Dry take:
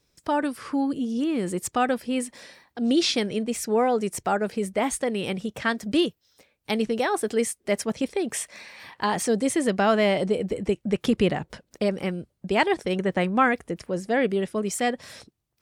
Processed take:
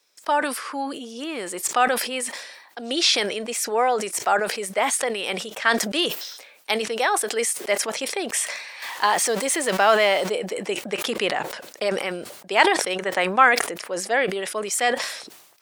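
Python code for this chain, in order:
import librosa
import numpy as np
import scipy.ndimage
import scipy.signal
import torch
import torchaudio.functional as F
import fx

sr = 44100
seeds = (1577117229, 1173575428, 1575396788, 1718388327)

y = fx.zero_step(x, sr, step_db=-37.0, at=(8.82, 10.3))
y = scipy.signal.sosfilt(scipy.signal.butter(2, 670.0, 'highpass', fs=sr, output='sos'), y)
y = fx.sustainer(y, sr, db_per_s=60.0)
y = F.gain(torch.from_numpy(y), 6.0).numpy()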